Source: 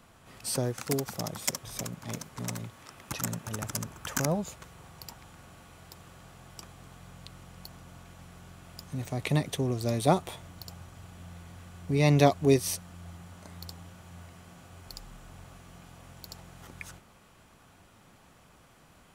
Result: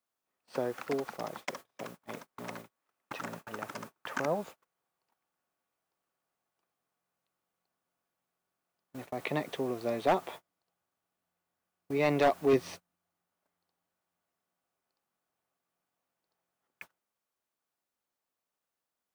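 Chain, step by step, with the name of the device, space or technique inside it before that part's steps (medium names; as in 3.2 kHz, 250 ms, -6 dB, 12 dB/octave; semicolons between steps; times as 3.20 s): aircraft radio (band-pass 340–2400 Hz; hard clipper -20 dBFS, distortion -12 dB; white noise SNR 20 dB; gate -45 dBFS, range -33 dB); 12.53–12.96 s: tone controls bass +7 dB, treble +1 dB; trim +1 dB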